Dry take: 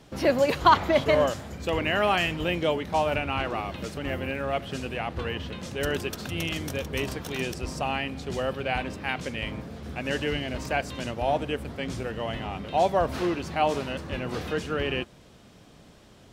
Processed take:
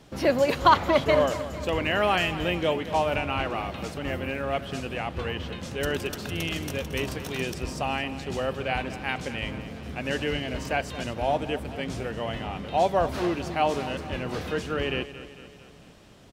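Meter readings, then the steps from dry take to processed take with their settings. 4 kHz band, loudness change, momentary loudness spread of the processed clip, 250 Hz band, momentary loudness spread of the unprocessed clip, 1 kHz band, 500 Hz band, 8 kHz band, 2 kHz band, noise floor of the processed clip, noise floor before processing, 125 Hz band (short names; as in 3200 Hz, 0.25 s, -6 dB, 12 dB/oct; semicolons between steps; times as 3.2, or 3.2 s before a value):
+0.5 dB, 0.0 dB, 10 LU, +0.5 dB, 10 LU, +0.5 dB, +0.5 dB, 0.0 dB, 0.0 dB, -50 dBFS, -52 dBFS, 0.0 dB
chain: feedback echo 0.225 s, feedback 55%, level -14 dB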